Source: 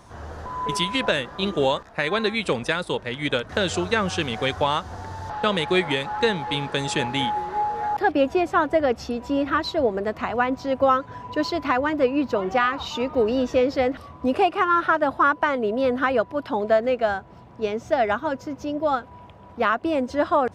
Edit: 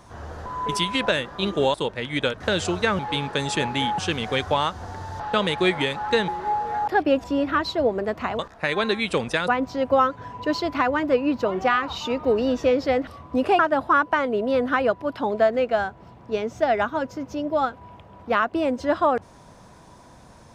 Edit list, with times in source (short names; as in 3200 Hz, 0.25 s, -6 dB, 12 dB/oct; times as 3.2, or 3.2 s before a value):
1.74–2.83 move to 10.38
6.38–7.37 move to 4.08
8.33–9.23 cut
14.49–14.89 cut